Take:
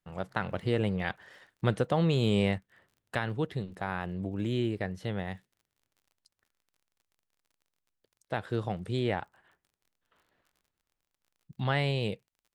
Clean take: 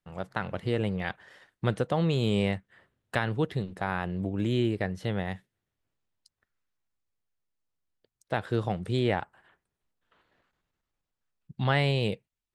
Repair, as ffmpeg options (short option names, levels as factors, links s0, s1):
-af "adeclick=t=4,asetnsamples=n=441:p=0,asendcmd='2.58 volume volume 3.5dB',volume=1"